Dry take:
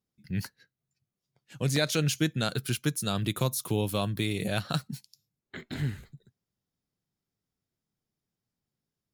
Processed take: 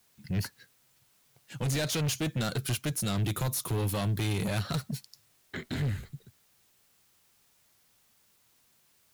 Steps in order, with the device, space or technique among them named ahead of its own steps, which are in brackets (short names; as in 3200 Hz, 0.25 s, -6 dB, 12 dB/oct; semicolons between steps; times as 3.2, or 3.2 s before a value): open-reel tape (soft clip -32 dBFS, distortion -6 dB; bell 95 Hz +4.5 dB; white noise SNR 33 dB); gain +4.5 dB